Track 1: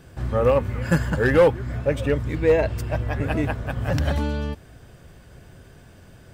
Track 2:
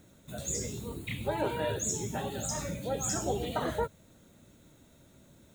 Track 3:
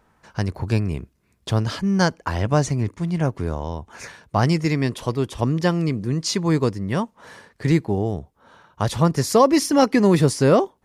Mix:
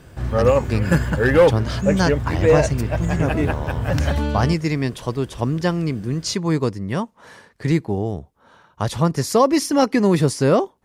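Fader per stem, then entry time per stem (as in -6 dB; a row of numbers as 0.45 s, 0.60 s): +2.5 dB, -12.0 dB, -0.5 dB; 0.00 s, 0.00 s, 0.00 s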